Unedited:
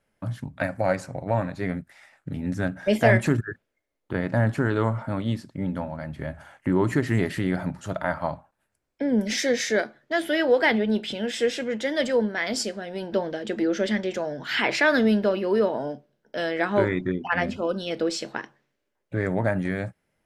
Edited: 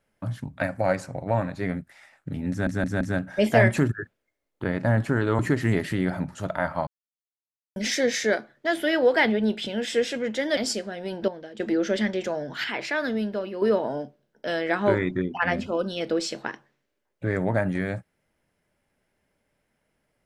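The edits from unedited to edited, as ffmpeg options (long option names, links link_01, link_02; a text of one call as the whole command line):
ffmpeg -i in.wav -filter_complex "[0:a]asplit=12[link_01][link_02][link_03][link_04][link_05][link_06][link_07][link_08][link_09][link_10][link_11][link_12];[link_01]atrim=end=2.672[link_13];[link_02]atrim=start=2.498:end=2.672[link_14];[link_03]atrim=start=2.498:end=2.672[link_15];[link_04]atrim=start=2.498:end=4.882[link_16];[link_05]atrim=start=6.848:end=8.33,asetpts=PTS-STARTPTS,afade=type=out:start_time=1.478:duration=0.004:curve=hsin[link_17];[link_06]atrim=start=8.33:end=9.22,asetpts=PTS-STARTPTS,volume=0[link_18];[link_07]atrim=start=9.22:end=12.032,asetpts=PTS-STARTPTS,afade=type=in:duration=0.004:curve=hsin[link_19];[link_08]atrim=start=12.468:end=13.182[link_20];[link_09]atrim=start=13.178:end=13.502,asetpts=PTS-STARTPTS,volume=-9.5dB[link_21];[link_10]atrim=start=13.498:end=14.542[link_22];[link_11]atrim=start=14.538:end=15.522,asetpts=PTS-STARTPTS,volume=-7dB[link_23];[link_12]atrim=start=15.518[link_24];[link_13][link_14]acrossfade=duration=0.004:curve1=hsin:curve2=hsin[link_25];[link_25][link_15]acrossfade=duration=0.004:curve1=hsin:curve2=hsin[link_26];[link_26][link_16]acrossfade=duration=0.004:curve1=hsin:curve2=hsin[link_27];[link_17][link_18][link_19]concat=n=3:v=0:a=1[link_28];[link_27][link_28]acrossfade=duration=0.004:curve1=hsin:curve2=hsin[link_29];[link_29][link_20]acrossfade=duration=0.004:curve1=hsin:curve2=hsin[link_30];[link_30][link_21]acrossfade=duration=0.004:curve1=hsin:curve2=hsin[link_31];[link_31][link_22]acrossfade=duration=0.004:curve1=hsin:curve2=hsin[link_32];[link_32][link_23]acrossfade=duration=0.004:curve1=hsin:curve2=hsin[link_33];[link_33][link_24]acrossfade=duration=0.004:curve1=hsin:curve2=hsin" out.wav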